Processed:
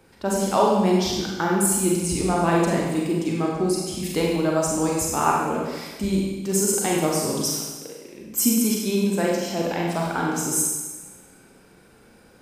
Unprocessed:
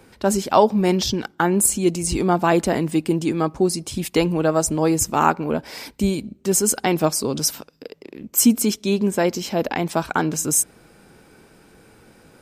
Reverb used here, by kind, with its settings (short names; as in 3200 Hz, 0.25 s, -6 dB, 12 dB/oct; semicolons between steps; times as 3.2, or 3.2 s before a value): Schroeder reverb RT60 1.2 s, combs from 32 ms, DRR -2.5 dB; gain -6.5 dB